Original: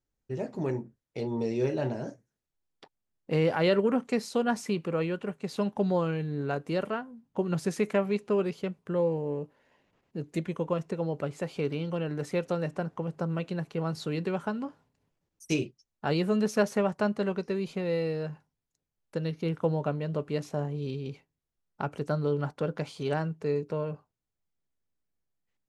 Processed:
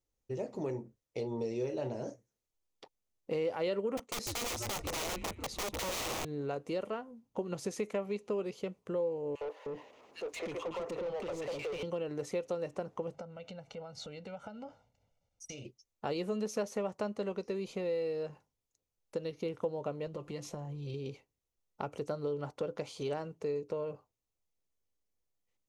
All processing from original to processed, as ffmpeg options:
-filter_complex "[0:a]asettb=1/sr,asplit=3[s0][s1][s2];[s0]atrim=end=3.974[s3];[s1]atrim=start=3.97:end=6.25,asetpts=PTS-STARTPTS,afade=t=in:d=0.004:c=qsin,afade=t=out:st=2.276:d=0.004:c=qsin,agate=range=0.447:threshold=0.00562:ratio=16:release=100:detection=peak,asplit=5[s4][s5][s6][s7][s8];[s5]adelay=145,afreqshift=-130,volume=0.316[s9];[s6]adelay=290,afreqshift=-260,volume=0.133[s10];[s7]adelay=435,afreqshift=-390,volume=0.0556[s11];[s8]adelay=580,afreqshift=-520,volume=0.0234[s12];[s4][s9][s10][s11][s12]amix=inputs=5:normalize=0,atrim=end_sample=100548,aeval=exprs='(mod(25.1*val(0)+1,2)-1)/25.1':c=same[s13];[s2]atrim=start=6.246[s14];[s3][s13]acrossfade=d=0.004:c1=hsin:c2=qsin[s15];[s15][s14]acrossfade=d=0.004:c1=qsin:c2=hsin,asettb=1/sr,asplit=3[s16][s17][s18];[s16]atrim=end=9.354[s19];[s17]atrim=start=9.35:end=11.83,asetpts=PTS-STARTPTS,afade=t=in:d=0.004:c=qsin,afade=t=out:st=2.476:d=0.004:c=qsin,acrossover=split=450|1700[s20][s21][s22];[s21]adelay=60[s23];[s20]adelay=310[s24];[s24][s23][s22]amix=inputs=3:normalize=0,atrim=end_sample=109368,acompressor=threshold=0.0112:ratio=4:attack=3.2:release=140:knee=1:detection=peak,asplit=2[s25][s26];[s26]highpass=f=720:p=1,volume=20,asoftclip=type=tanh:threshold=0.0335[s27];[s25][s27]amix=inputs=2:normalize=0,lowpass=f=2500:p=1,volume=0.501[s28];[s18]atrim=start=11.826[s29];[s19][s28]acrossfade=d=0.004:c1=hsin:c2=qsin[s30];[s30][s29]acrossfade=d=0.004:c1=qsin:c2=hsin,asettb=1/sr,asplit=3[s31][s32][s33];[s31]atrim=end=13.144[s34];[s32]atrim=start=13.14:end=15.65,asetpts=PTS-STARTPTS,afade=t=in:d=0.004:c=qsin,afade=t=out:st=2.506:d=0.004:c=qsin,lowpass=6300,aecho=1:1:1.4:0.84,atrim=end_sample=110691,acompressor=threshold=0.0112:ratio=8:attack=3.2:release=140:knee=1:detection=peak[s35];[s33]atrim=start=15.646[s36];[s34][s35]acrossfade=d=0.004:c1=hsin:c2=qsin[s37];[s37][s36]acrossfade=d=0.004:c1=qsin:c2=hsin,asettb=1/sr,asplit=3[s38][s39][s40];[s38]atrim=end=20.064[s41];[s39]atrim=start=20.06:end=20.94,asetpts=PTS-STARTPTS,afade=t=in:d=0.004:c=qsin,afade=t=out:st=0.876:d=0.004:c=qsin,asubboost=boost=6:cutoff=220,aecho=1:1:5.8:0.59,atrim=end_sample=38808,acompressor=threshold=0.0251:ratio=6:attack=3.2:release=140:knee=1:detection=peak[s42];[s40]atrim=start=20.936[s43];[s41][s42]acrossfade=d=0.004:c1=hsin:c2=qsin[s44];[s44][s43]acrossfade=d=0.004:c1=qsin:c2=hsin,equalizer=f=160:t=o:w=0.33:g=-10,equalizer=f=250:t=o:w=0.33:g=-3,equalizer=f=500:t=o:w=0.33:g=5,equalizer=f=1600:t=o:w=0.33:g=-8,equalizer=f=6300:t=o:w=0.33:g=5,acompressor=threshold=0.0224:ratio=2.5,volume=0.841"

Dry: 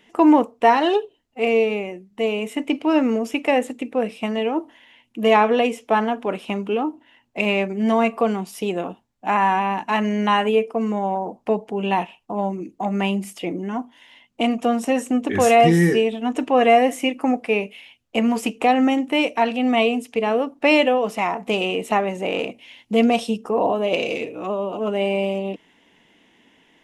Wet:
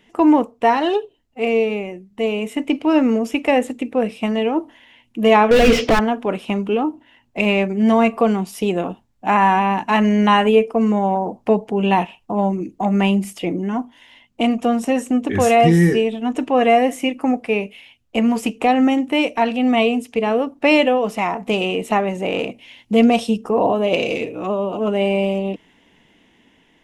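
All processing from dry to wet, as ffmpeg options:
-filter_complex "[0:a]asettb=1/sr,asplit=3[s0][s1][s2];[s0]atrim=end=5.514[s3];[s1]atrim=start=5.51:end=5.99,asetpts=PTS-STARTPTS,afade=t=in:d=0.004:c=qsin,afade=t=out:st=0.476:d=0.004:c=qsin,lowpass=f=4800:t=q:w=2.9,asplit=2[s4][s5];[s5]highpass=f=720:p=1,volume=100,asoftclip=type=tanh:threshold=0.531[s6];[s4][s6]amix=inputs=2:normalize=0,lowpass=f=1200:p=1,volume=0.501,equalizer=f=910:w=1.8:g=-8.5[s7];[s2]atrim=start=5.986[s8];[s3][s7]acrossfade=d=0.004:c1=hsin:c2=qsin[s9];[s9][s8]acrossfade=d=0.004:c1=qsin:c2=hsin,lowshelf=f=130:g=11,dynaudnorm=f=910:g=5:m=3.76,volume=0.891"

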